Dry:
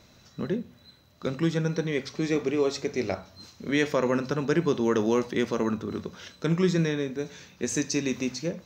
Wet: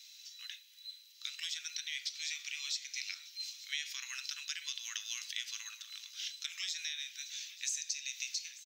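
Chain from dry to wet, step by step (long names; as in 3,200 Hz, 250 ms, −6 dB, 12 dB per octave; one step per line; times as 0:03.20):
inverse Chebyshev high-pass filter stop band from 470 Hz, stop band 80 dB
downward compressor 6 to 1, threshold −42 dBFS, peak gain reduction 14 dB
single-tap delay 888 ms −18 dB
level +7 dB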